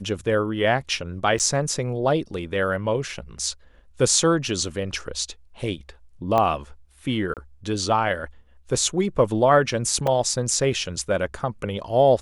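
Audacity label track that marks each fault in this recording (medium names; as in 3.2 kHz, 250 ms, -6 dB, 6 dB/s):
1.390000	1.400000	dropout 8.2 ms
6.380000	6.380000	pop -10 dBFS
7.340000	7.370000	dropout 28 ms
10.070000	10.070000	dropout 4 ms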